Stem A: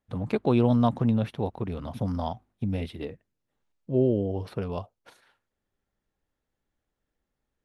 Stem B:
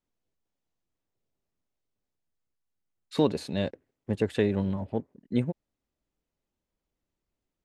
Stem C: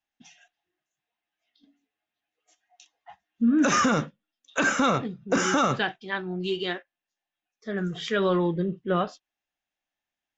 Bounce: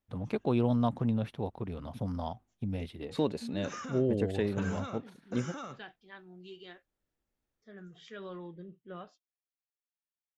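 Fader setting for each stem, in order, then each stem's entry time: -6.0 dB, -6.0 dB, -20.0 dB; 0.00 s, 0.00 s, 0.00 s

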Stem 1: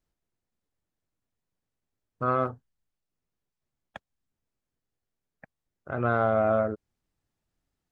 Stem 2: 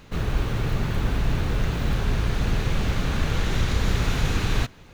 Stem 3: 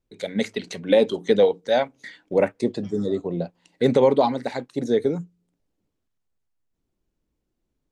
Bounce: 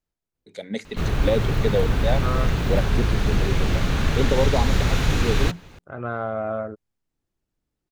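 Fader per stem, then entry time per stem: -3.5 dB, +2.5 dB, -5.5 dB; 0.00 s, 0.85 s, 0.35 s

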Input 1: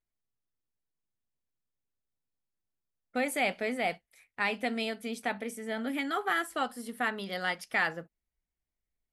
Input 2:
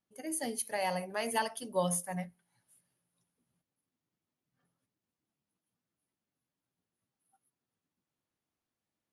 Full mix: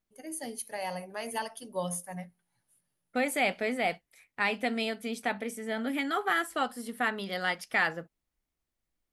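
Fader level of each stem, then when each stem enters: +1.5 dB, -2.5 dB; 0.00 s, 0.00 s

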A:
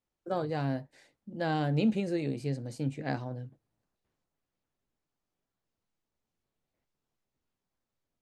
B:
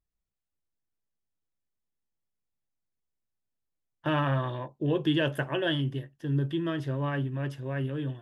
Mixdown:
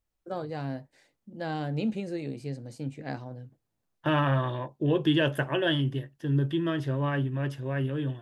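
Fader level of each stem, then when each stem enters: -2.5 dB, +2.0 dB; 0.00 s, 0.00 s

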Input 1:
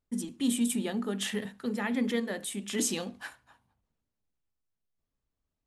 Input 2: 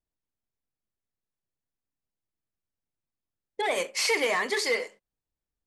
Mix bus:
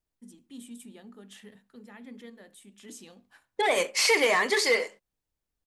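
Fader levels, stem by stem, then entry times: -16.5 dB, +3.0 dB; 0.10 s, 0.00 s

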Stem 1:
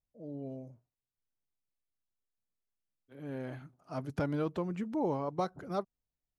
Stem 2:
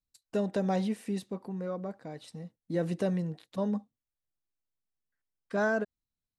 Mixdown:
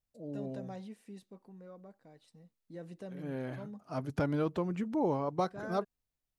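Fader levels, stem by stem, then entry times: +1.5 dB, -15.5 dB; 0.00 s, 0.00 s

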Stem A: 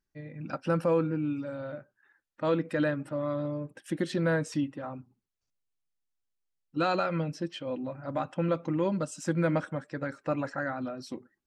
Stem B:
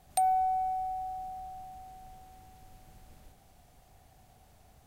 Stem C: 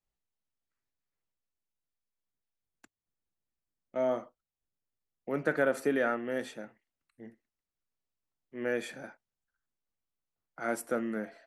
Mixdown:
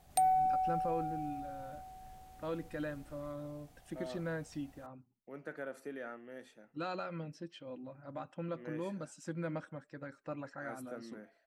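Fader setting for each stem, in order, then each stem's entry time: -12.0 dB, -2.0 dB, -15.5 dB; 0.00 s, 0.00 s, 0.00 s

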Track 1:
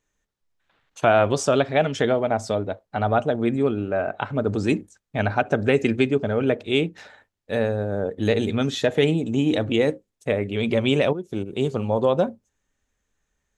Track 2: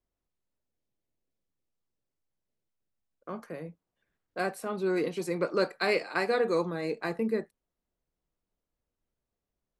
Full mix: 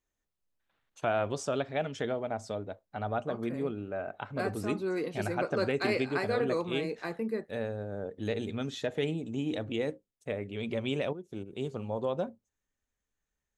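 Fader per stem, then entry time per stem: -12.0 dB, -4.0 dB; 0.00 s, 0.00 s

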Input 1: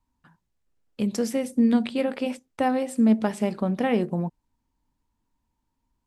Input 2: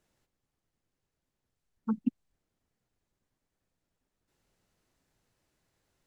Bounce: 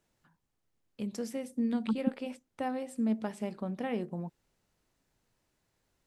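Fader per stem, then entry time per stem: -11.0 dB, -0.5 dB; 0.00 s, 0.00 s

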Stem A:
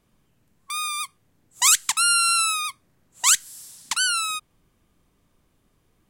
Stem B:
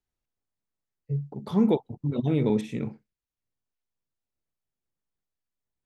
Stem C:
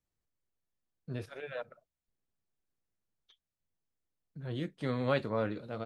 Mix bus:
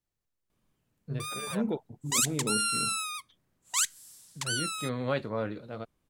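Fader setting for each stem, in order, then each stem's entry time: -10.0 dB, -9.0 dB, 0.0 dB; 0.50 s, 0.00 s, 0.00 s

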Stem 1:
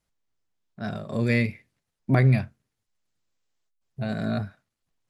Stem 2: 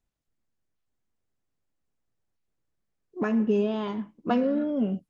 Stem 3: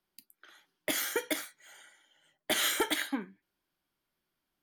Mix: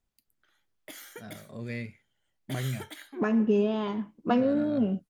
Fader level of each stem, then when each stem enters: -13.5 dB, 0.0 dB, -13.5 dB; 0.40 s, 0.00 s, 0.00 s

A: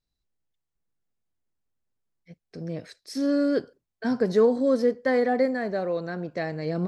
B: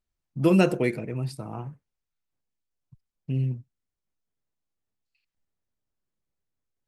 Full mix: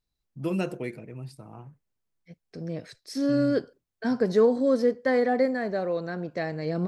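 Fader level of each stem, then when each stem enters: -0.5 dB, -9.0 dB; 0.00 s, 0.00 s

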